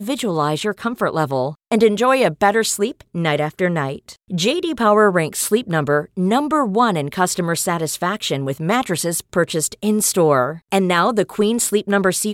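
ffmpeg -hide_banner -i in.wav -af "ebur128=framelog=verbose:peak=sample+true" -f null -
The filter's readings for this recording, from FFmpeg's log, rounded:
Integrated loudness:
  I:         -18.3 LUFS
  Threshold: -28.3 LUFS
Loudness range:
  LRA:         1.8 LU
  Threshold: -38.4 LUFS
  LRA low:   -19.3 LUFS
  LRA high:  -17.6 LUFS
Sample peak:
  Peak:       -3.0 dBFS
True peak:
  Peak:       -2.9 dBFS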